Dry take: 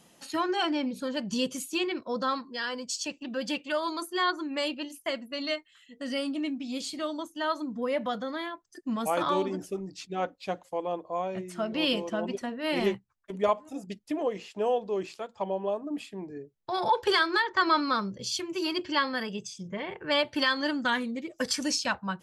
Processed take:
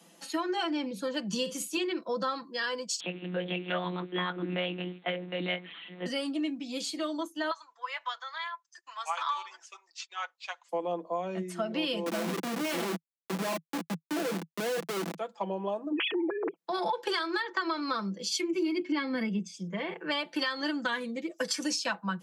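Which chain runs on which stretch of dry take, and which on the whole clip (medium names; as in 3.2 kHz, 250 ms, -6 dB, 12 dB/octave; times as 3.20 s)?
1.36–1.77 s: band-stop 350 Hz, Q 9.4 + doubling 48 ms -11.5 dB
3.00–6.06 s: jump at every zero crossing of -41.5 dBFS + hum notches 60/120/180/240/300/360/420/480/540 Hz + monotone LPC vocoder at 8 kHz 180 Hz
7.51–10.69 s: transient shaper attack +5 dB, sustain -2 dB + elliptic band-pass 980–7100 Hz, stop band 60 dB
12.06–15.18 s: doubling 34 ms -13 dB + Schmitt trigger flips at -36 dBFS
15.92–16.56 s: formants replaced by sine waves + level flattener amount 100%
18.29–19.54 s: small resonant body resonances 250/2200 Hz, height 16 dB, ringing for 25 ms + three bands expanded up and down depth 100%
whole clip: steep high-pass 160 Hz 96 dB/octave; comb 6 ms, depth 49%; compression 10:1, threshold -27 dBFS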